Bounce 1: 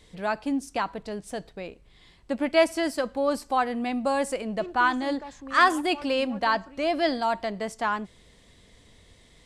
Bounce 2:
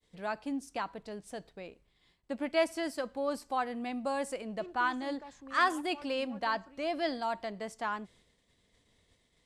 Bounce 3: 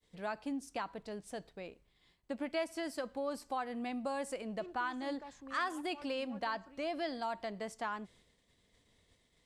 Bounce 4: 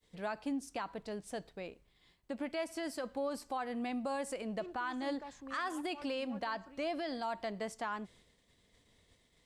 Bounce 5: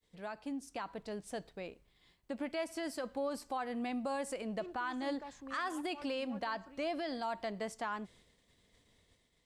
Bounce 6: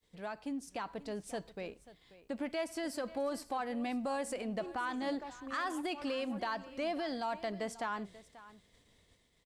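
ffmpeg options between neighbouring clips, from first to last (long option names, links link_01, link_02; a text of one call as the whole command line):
ffmpeg -i in.wav -af "agate=range=-33dB:threshold=-49dB:ratio=3:detection=peak,lowshelf=frequency=82:gain=-6,volume=-8dB" out.wav
ffmpeg -i in.wav -af "acompressor=threshold=-34dB:ratio=2.5,volume=-1dB" out.wav
ffmpeg -i in.wav -af "alimiter=level_in=6.5dB:limit=-24dB:level=0:latency=1:release=62,volume=-6.5dB,volume=2dB" out.wav
ffmpeg -i in.wav -af "dynaudnorm=framelen=300:gausssize=5:maxgain=5dB,volume=-5dB" out.wav
ffmpeg -i in.wav -filter_complex "[0:a]asplit=2[link_01][link_02];[link_02]asoftclip=type=hard:threshold=-39.5dB,volume=-12dB[link_03];[link_01][link_03]amix=inputs=2:normalize=0,aecho=1:1:537:0.133" out.wav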